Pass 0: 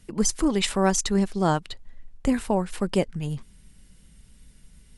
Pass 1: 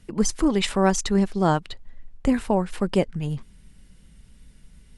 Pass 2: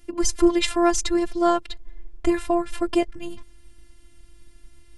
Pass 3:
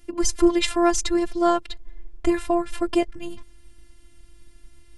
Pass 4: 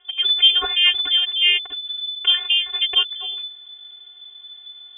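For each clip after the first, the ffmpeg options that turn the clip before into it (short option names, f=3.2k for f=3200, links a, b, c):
-af "highshelf=f=5.4k:g=-7.5,volume=2dB"
-af "afftfilt=real='hypot(re,im)*cos(PI*b)':imag='0':win_size=512:overlap=0.75,volume=5dB"
-af anull
-af "lowpass=f=3k:t=q:w=0.5098,lowpass=f=3k:t=q:w=0.6013,lowpass=f=3k:t=q:w=0.9,lowpass=f=3k:t=q:w=2.563,afreqshift=-3500,volume=2.5dB"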